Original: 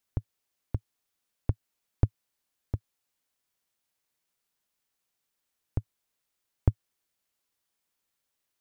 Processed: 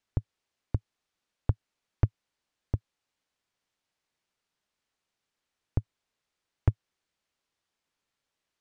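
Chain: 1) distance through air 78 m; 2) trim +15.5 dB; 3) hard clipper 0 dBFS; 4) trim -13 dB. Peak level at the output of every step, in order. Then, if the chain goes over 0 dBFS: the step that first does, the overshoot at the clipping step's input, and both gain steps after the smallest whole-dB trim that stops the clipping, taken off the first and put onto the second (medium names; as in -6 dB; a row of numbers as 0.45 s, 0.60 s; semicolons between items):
-8.5 dBFS, +7.0 dBFS, 0.0 dBFS, -13.0 dBFS; step 2, 7.0 dB; step 2 +8.5 dB, step 4 -6 dB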